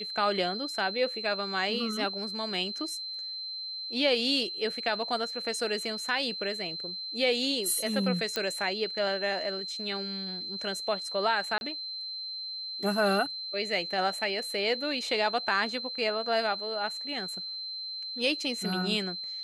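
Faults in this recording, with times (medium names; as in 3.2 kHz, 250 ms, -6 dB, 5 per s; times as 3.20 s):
whine 4.1 kHz -35 dBFS
8.36 s: pop -14 dBFS
11.58–11.61 s: dropout 31 ms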